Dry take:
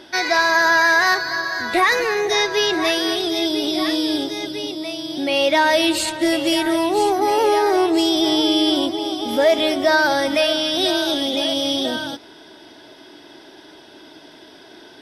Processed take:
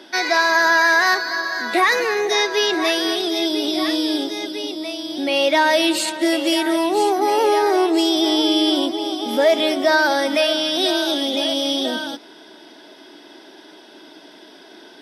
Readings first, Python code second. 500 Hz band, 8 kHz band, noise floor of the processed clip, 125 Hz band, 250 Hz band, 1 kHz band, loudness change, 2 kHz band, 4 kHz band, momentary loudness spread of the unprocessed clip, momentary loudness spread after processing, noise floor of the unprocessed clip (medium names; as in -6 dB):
0.0 dB, 0.0 dB, -45 dBFS, no reading, 0.0 dB, 0.0 dB, 0.0 dB, 0.0 dB, 0.0 dB, 8 LU, 8 LU, -45 dBFS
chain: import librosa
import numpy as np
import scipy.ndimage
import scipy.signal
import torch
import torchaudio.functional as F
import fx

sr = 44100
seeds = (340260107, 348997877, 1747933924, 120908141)

y = scipy.signal.sosfilt(scipy.signal.butter(12, 170.0, 'highpass', fs=sr, output='sos'), x)